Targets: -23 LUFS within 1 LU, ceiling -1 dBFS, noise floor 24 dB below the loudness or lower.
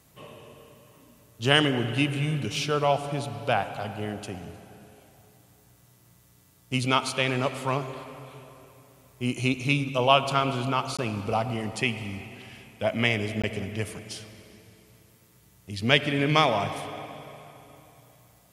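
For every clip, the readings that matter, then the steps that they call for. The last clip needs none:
dropouts 2; longest dropout 16 ms; loudness -26.0 LUFS; peak -3.0 dBFS; loudness target -23.0 LUFS
-> interpolate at 10.97/13.42, 16 ms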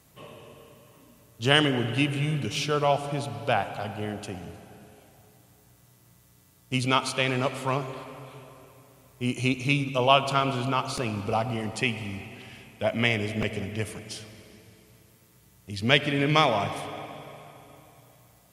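dropouts 0; loudness -26.0 LUFS; peak -3.0 dBFS; loudness target -23.0 LUFS
-> gain +3 dB; limiter -1 dBFS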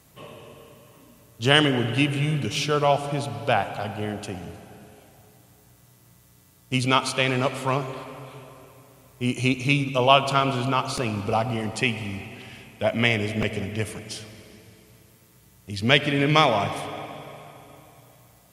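loudness -23.5 LUFS; peak -1.0 dBFS; noise floor -56 dBFS

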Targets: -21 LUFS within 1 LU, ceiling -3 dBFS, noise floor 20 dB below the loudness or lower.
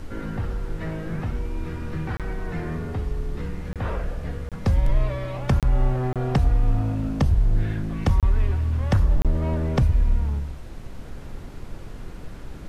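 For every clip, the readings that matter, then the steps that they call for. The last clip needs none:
dropouts 7; longest dropout 27 ms; noise floor -38 dBFS; noise floor target -46 dBFS; loudness -25.5 LUFS; peak -10.0 dBFS; loudness target -21.0 LUFS
-> interpolate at 2.17/3.73/4.49/5.6/6.13/8.2/9.22, 27 ms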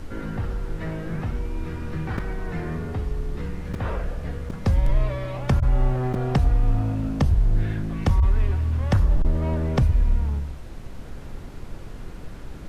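dropouts 0; noise floor -37 dBFS; noise floor target -46 dBFS
-> noise print and reduce 9 dB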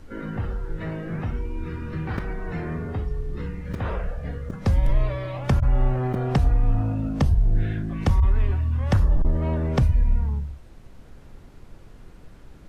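noise floor -46 dBFS; loudness -25.5 LUFS; peak -10.5 dBFS; loudness target -21.0 LUFS
-> gain +4.5 dB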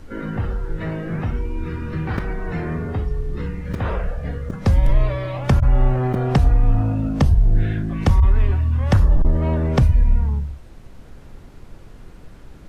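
loudness -21.0 LUFS; peak -6.0 dBFS; noise floor -42 dBFS

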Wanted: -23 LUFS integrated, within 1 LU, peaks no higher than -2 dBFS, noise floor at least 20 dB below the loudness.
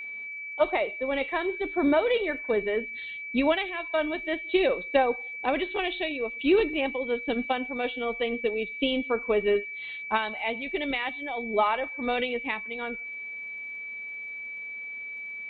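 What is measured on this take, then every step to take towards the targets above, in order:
ticks 26/s; steady tone 2300 Hz; tone level -35 dBFS; loudness -28.5 LUFS; peak -9.0 dBFS; loudness target -23.0 LUFS
-> de-click; notch 2300 Hz, Q 30; gain +5.5 dB

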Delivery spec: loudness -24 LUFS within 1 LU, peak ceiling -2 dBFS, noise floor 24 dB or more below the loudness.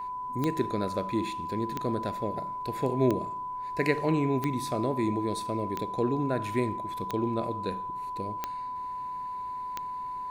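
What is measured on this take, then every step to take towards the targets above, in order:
clicks 8; steady tone 1000 Hz; tone level -33 dBFS; loudness -31.0 LUFS; peak -9.5 dBFS; loudness target -24.0 LUFS
-> de-click; notch 1000 Hz, Q 30; gain +7 dB

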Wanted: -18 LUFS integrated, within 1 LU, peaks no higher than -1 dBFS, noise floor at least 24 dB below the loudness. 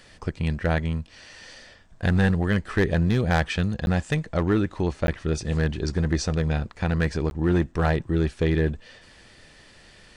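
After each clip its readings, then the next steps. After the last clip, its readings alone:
clipped 0.7%; flat tops at -13.5 dBFS; dropouts 3; longest dropout 11 ms; loudness -25.0 LUFS; peak -13.5 dBFS; loudness target -18.0 LUFS
-> clip repair -13.5 dBFS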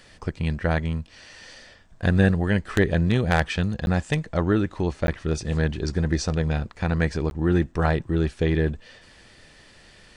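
clipped 0.0%; dropouts 3; longest dropout 11 ms
-> interpolate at 3.86/5.07/7.3, 11 ms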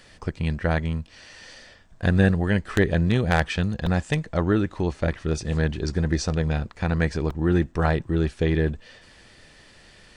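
dropouts 0; loudness -24.5 LUFS; peak -4.5 dBFS; loudness target -18.0 LUFS
-> gain +6.5 dB; limiter -1 dBFS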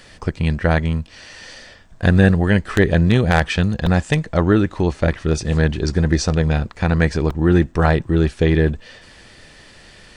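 loudness -18.0 LUFS; peak -1.0 dBFS; noise floor -46 dBFS

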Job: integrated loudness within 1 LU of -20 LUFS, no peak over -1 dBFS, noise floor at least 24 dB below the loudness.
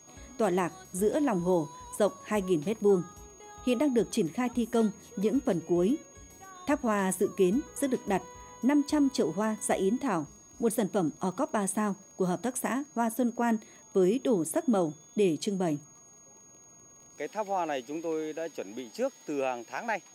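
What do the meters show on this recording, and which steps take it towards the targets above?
ticks 24/s; steady tone 6600 Hz; tone level -53 dBFS; loudness -30.0 LUFS; peak -14.5 dBFS; loudness target -20.0 LUFS
-> de-click; notch 6600 Hz, Q 30; gain +10 dB

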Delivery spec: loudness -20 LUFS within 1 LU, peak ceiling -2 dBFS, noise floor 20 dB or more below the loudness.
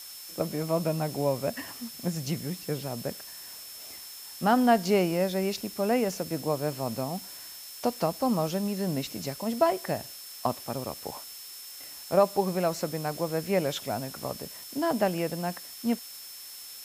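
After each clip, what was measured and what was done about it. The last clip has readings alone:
steady tone 5300 Hz; tone level -46 dBFS; noise floor -44 dBFS; noise floor target -50 dBFS; loudness -29.5 LUFS; peak -9.5 dBFS; loudness target -20.0 LUFS
-> notch 5300 Hz, Q 30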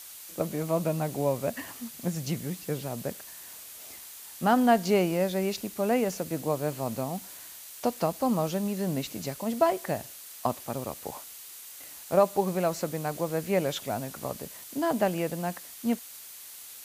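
steady tone none; noise floor -46 dBFS; noise floor target -50 dBFS
-> denoiser 6 dB, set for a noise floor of -46 dBFS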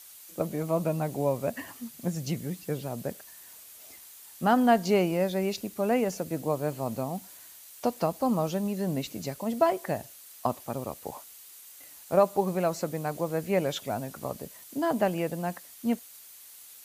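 noise floor -50 dBFS; loudness -29.5 LUFS; peak -9.5 dBFS; loudness target -20.0 LUFS
-> gain +9.5 dB; limiter -2 dBFS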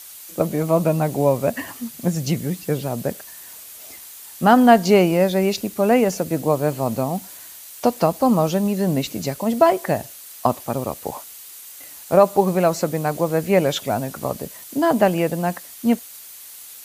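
loudness -20.0 LUFS; peak -2.0 dBFS; noise floor -40 dBFS

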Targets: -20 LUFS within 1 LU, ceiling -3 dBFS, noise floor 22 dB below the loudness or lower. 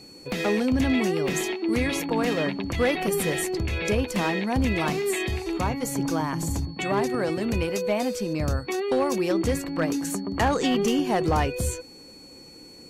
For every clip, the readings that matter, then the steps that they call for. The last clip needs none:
clipped 0.5%; flat tops at -16.0 dBFS; steady tone 4400 Hz; tone level -47 dBFS; loudness -25.5 LUFS; peak -16.0 dBFS; loudness target -20.0 LUFS
-> clip repair -16 dBFS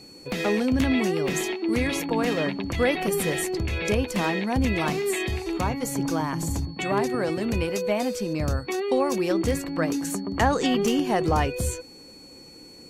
clipped 0.0%; steady tone 4400 Hz; tone level -47 dBFS
-> notch 4400 Hz, Q 30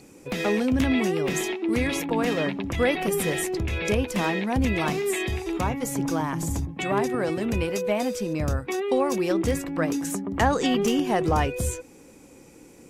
steady tone none; loudness -25.5 LUFS; peak -7.0 dBFS; loudness target -20.0 LUFS
-> gain +5.5 dB; limiter -3 dBFS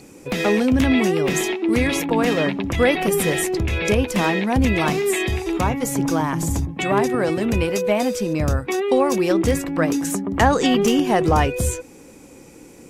loudness -20.0 LUFS; peak -3.0 dBFS; noise floor -45 dBFS

